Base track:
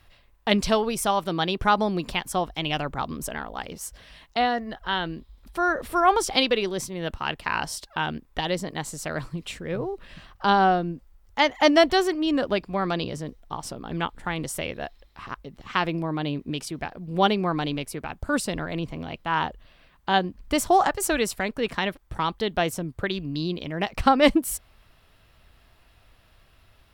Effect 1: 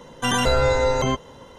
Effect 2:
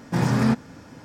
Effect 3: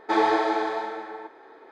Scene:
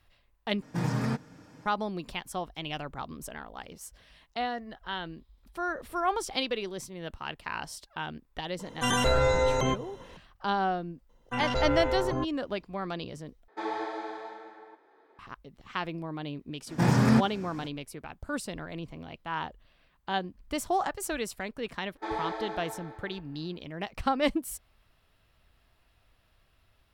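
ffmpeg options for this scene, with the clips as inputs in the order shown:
-filter_complex "[2:a]asplit=2[a][b];[1:a]asplit=2[c][d];[3:a]asplit=2[e][f];[0:a]volume=-9dB[g];[a]aecho=1:1:6.5:0.37[h];[c]bandreject=f=4.7k:w=9.5[i];[d]afwtdn=0.0447[j];[g]asplit=3[k][l][m];[k]atrim=end=0.624[n];[h]atrim=end=1.04,asetpts=PTS-STARTPTS,volume=-9dB[o];[l]atrim=start=1.656:end=13.484[p];[e]atrim=end=1.71,asetpts=PTS-STARTPTS,volume=-12.5dB[q];[m]atrim=start=15.186[r];[i]atrim=end=1.58,asetpts=PTS-STARTPTS,volume=-5dB,afade=t=in:d=0.004:c=hsin,afade=t=out:st=1.576:d=0.004:c=hsin,adelay=8590[s];[j]atrim=end=1.58,asetpts=PTS-STARTPTS,volume=-9dB,afade=t=in:d=0.004:c=hsin,afade=t=out:st=1.576:d=0.004:c=hsin,adelay=11090[t];[b]atrim=end=1.04,asetpts=PTS-STARTPTS,volume=-1.5dB,afade=t=in:d=0.05,afade=t=out:st=0.99:d=0.05,adelay=16660[u];[f]atrim=end=1.71,asetpts=PTS-STARTPTS,volume=-12.5dB,afade=t=in:d=0.1,afade=t=out:st=1.61:d=0.1,adelay=21930[v];[n][o]acrossfade=d=0.004:c1=hsin:c2=hsin[w];[w][p]acrossfade=d=0.004:c1=hsin:c2=hsin[x];[x][q]acrossfade=d=0.004:c1=hsin:c2=hsin[y];[y][r]acrossfade=d=0.004:c1=hsin:c2=hsin[z];[z][s][t][u][v]amix=inputs=5:normalize=0"

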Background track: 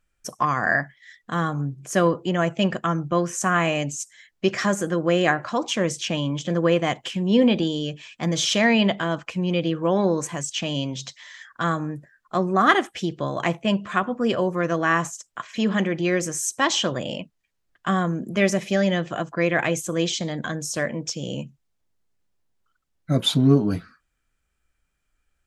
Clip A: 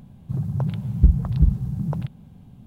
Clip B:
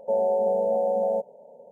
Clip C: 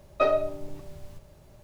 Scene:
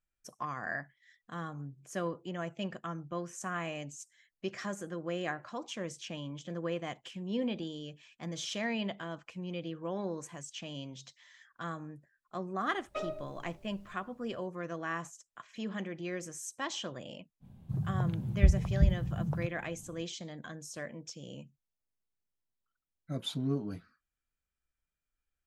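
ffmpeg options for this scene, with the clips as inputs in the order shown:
-filter_complex "[0:a]volume=-16dB[a];[3:a]atrim=end=1.63,asetpts=PTS-STARTPTS,volume=-15dB,afade=t=in:d=0.004:c=hsin,afade=t=out:st=1.626:d=0.004:c=hsin,adelay=12750[b];[1:a]atrim=end=2.66,asetpts=PTS-STARTPTS,volume=-8dB,afade=t=in:d=0.05,afade=t=out:st=2.61:d=0.05,adelay=17400[c];[a][b][c]amix=inputs=3:normalize=0"

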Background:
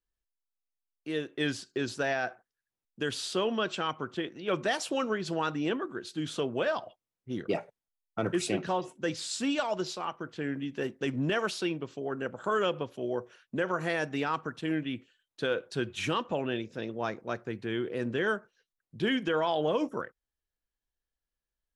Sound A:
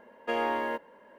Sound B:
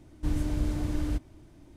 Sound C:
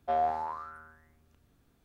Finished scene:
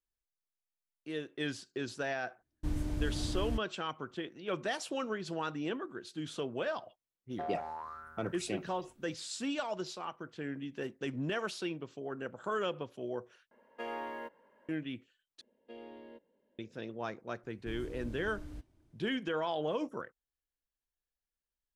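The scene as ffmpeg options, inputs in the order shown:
-filter_complex "[2:a]asplit=2[a][b];[1:a]asplit=2[c][d];[0:a]volume=-6dB[e];[a]agate=range=-26dB:threshold=-41dB:ratio=16:release=100:detection=peak[f];[3:a]acompressor=threshold=-36dB:ratio=3:attack=2.7:release=110:knee=6:detection=peak[g];[d]firequalizer=gain_entry='entry(330,0);entry(1100,-19);entry(3600,-1);entry(6200,-16)':delay=0.05:min_phase=1[h];[e]asplit=3[i][j][k];[i]atrim=end=13.514[l];[c]atrim=end=1.18,asetpts=PTS-STARTPTS,volume=-11dB[m];[j]atrim=start=14.686:end=15.414[n];[h]atrim=end=1.18,asetpts=PTS-STARTPTS,volume=-14.5dB[o];[k]atrim=start=16.586[p];[f]atrim=end=1.76,asetpts=PTS-STARTPTS,volume=-6dB,afade=t=in:d=0.004:c=hsin,afade=t=out:st=1.756:d=0.004:c=hsin,adelay=2400[q];[g]atrim=end=1.84,asetpts=PTS-STARTPTS,volume=-2.5dB,afade=t=in:d=0.004:c=hsin,afade=t=out:st=1.836:d=0.004:c=hsin,adelay=7310[r];[b]atrim=end=1.76,asetpts=PTS-STARTPTS,volume=-16.5dB,afade=t=in:d=0.004:c=hsin,afade=t=out:st=1.756:d=0.004:c=hsin,adelay=17430[s];[l][m]acrossfade=d=0.004:c1=hsin:c2=hsin[t];[t][n]acrossfade=d=0.004:c1=hsin:c2=hsin[u];[u][o]acrossfade=d=0.004:c1=hsin:c2=hsin[v];[v][p]acrossfade=d=0.004:c1=hsin:c2=hsin[w];[w][q][r][s]amix=inputs=4:normalize=0"

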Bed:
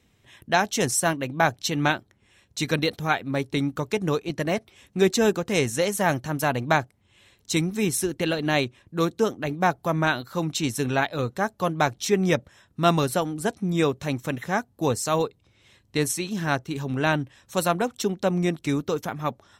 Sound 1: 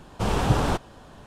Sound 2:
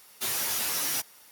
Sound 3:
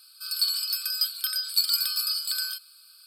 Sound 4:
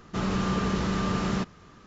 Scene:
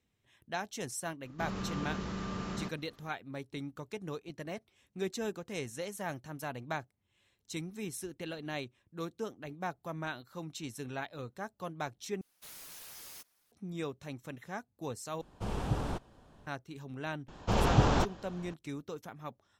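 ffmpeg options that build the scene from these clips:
-filter_complex "[1:a]asplit=2[a][b];[0:a]volume=-16dB[c];[2:a]aeval=exprs='val(0)*sin(2*PI*520*n/s+520*0.65/2.3*sin(2*PI*2.3*n/s))':c=same[d];[a]lowshelf=f=500:g=4.5[e];[b]aresample=16000,aresample=44100[f];[c]asplit=3[g][h][i];[g]atrim=end=12.214[j];[d]atrim=end=1.31,asetpts=PTS-STARTPTS,volume=-17dB[k];[h]atrim=start=13.516:end=15.214[l];[e]atrim=end=1.26,asetpts=PTS-STARTPTS,volume=-15dB[m];[i]atrim=start=16.466[n];[4:a]atrim=end=1.86,asetpts=PTS-STARTPTS,volume=-11dB,afade=t=in:d=0.004:c=hsin,afade=t=out:st=1.856:d=0.004:c=hsin,adelay=1250[o];[f]atrim=end=1.26,asetpts=PTS-STARTPTS,volume=-3.5dB,afade=t=in:d=0.004:c=hsin,afade=t=out:st=1.256:d=0.004:c=hsin,adelay=17280[p];[j][k]acrossfade=d=0.004:c1=hsin:c2=hsin[q];[q][l]acrossfade=d=0.004:c1=hsin:c2=hsin[r];[r][m]acrossfade=d=0.004:c1=hsin:c2=hsin[s];[s][n]acrossfade=d=0.004:c1=hsin:c2=hsin[t];[t][o][p]amix=inputs=3:normalize=0"

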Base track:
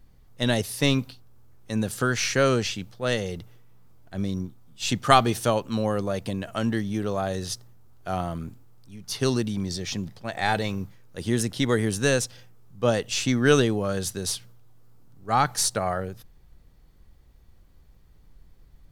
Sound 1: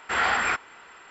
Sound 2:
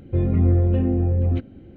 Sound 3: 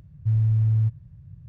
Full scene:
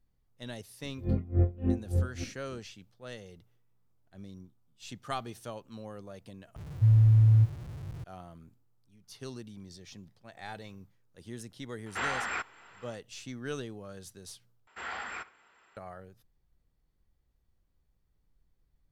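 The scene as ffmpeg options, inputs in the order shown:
-filter_complex "[1:a]asplit=2[a][b];[0:a]volume=-18.5dB[c];[2:a]aeval=exprs='val(0)*pow(10,-26*(0.5-0.5*cos(2*PI*3.5*n/s))/20)':c=same[d];[3:a]aeval=exprs='val(0)+0.5*0.00794*sgn(val(0))':c=same[e];[a]alimiter=limit=-15.5dB:level=0:latency=1:release=499[f];[b]asplit=2[g][h];[h]adelay=68,lowpass=f=4k:p=1,volume=-18dB,asplit=2[i][j];[j]adelay=68,lowpass=f=4k:p=1,volume=0.37,asplit=2[k][l];[l]adelay=68,lowpass=f=4k:p=1,volume=0.37[m];[g][i][k][m]amix=inputs=4:normalize=0[n];[c]asplit=3[o][p][q];[o]atrim=end=6.564[r];[e]atrim=end=1.48[s];[p]atrim=start=8.036:end=14.674[t];[n]atrim=end=1.1,asetpts=PTS-STARTPTS,volume=-15.5dB[u];[q]atrim=start=15.766[v];[d]atrim=end=1.76,asetpts=PTS-STARTPTS,volume=-4dB,afade=t=in:d=0.004:c=hsin,afade=t=out:st=1.756:d=0.004:c=hsin,adelay=840[w];[f]atrim=end=1.1,asetpts=PTS-STARTPTS,volume=-7dB,afade=t=in:d=0.004:c=hsin,afade=t=out:st=1.096:d=0.004:c=hsin,adelay=523026S[x];[r][s]acrossfade=d=0.004:c1=hsin:c2=hsin[y];[y][t]acrossfade=d=0.004:c1=hsin:c2=hsin[z];[z][u]acrossfade=d=0.004:c1=hsin:c2=hsin[aa];[aa][v]acrossfade=d=0.004:c1=hsin:c2=hsin[ab];[ab][w][x]amix=inputs=3:normalize=0"

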